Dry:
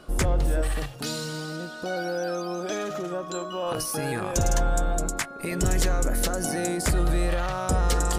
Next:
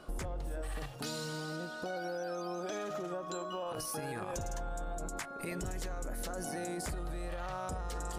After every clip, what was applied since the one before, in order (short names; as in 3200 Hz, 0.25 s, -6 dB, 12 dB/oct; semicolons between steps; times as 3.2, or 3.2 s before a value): bell 850 Hz +4 dB 1.4 oct; limiter -19.5 dBFS, peak gain reduction 8 dB; compressor, threshold -29 dBFS, peak gain reduction 6.5 dB; gain -6 dB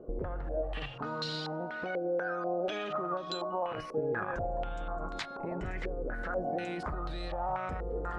stepped low-pass 4.1 Hz 460–4000 Hz; gain +1 dB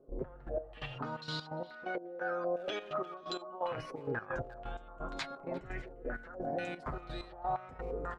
flange 0.75 Hz, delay 7.3 ms, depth 1.1 ms, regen +27%; step gate ".x..x..xxx.x" 129 bpm -12 dB; speakerphone echo 0.35 s, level -17 dB; gain +2.5 dB